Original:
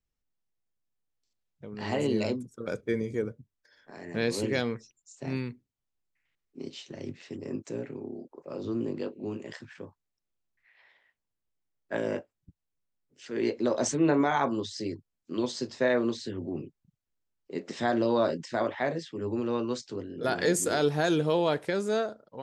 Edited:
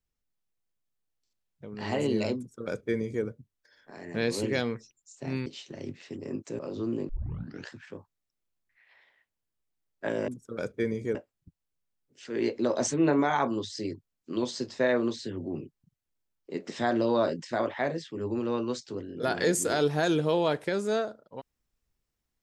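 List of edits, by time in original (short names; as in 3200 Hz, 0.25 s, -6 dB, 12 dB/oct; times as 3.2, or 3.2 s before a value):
2.37–3.24 copy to 12.16
5.46–6.66 cut
7.79–8.47 cut
8.97 tape start 0.62 s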